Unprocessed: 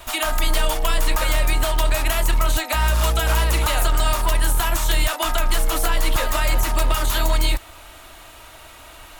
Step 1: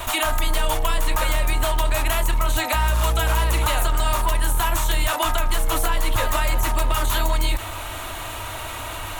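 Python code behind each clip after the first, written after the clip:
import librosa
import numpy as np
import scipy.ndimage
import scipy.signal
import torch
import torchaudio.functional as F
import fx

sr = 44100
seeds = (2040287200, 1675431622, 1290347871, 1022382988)

y = fx.graphic_eq_31(x, sr, hz=(100, 1000, 5000), db=(11, 4, -6))
y = fx.env_flatten(y, sr, amount_pct=50)
y = y * 10.0 ** (-3.0 / 20.0)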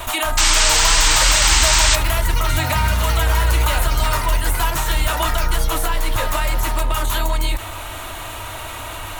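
y = fx.echo_pitch(x, sr, ms=644, semitones=7, count=3, db_per_echo=-6.0)
y = fx.spec_paint(y, sr, seeds[0], shape='noise', start_s=0.37, length_s=1.59, low_hz=790.0, high_hz=8700.0, level_db=-17.0)
y = y * 10.0 ** (1.0 / 20.0)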